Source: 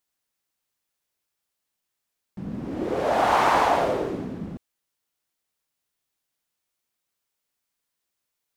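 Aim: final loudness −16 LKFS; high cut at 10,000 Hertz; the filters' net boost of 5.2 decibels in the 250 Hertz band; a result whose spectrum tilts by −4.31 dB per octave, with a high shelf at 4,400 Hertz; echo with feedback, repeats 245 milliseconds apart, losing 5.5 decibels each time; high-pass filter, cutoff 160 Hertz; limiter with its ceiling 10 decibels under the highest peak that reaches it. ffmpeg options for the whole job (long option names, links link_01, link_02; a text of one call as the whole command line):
ffmpeg -i in.wav -af "highpass=160,lowpass=10000,equalizer=frequency=250:width_type=o:gain=7.5,highshelf=frequency=4400:gain=6.5,alimiter=limit=-17dB:level=0:latency=1,aecho=1:1:245|490|735|980|1225|1470|1715:0.531|0.281|0.149|0.079|0.0419|0.0222|0.0118,volume=10dB" out.wav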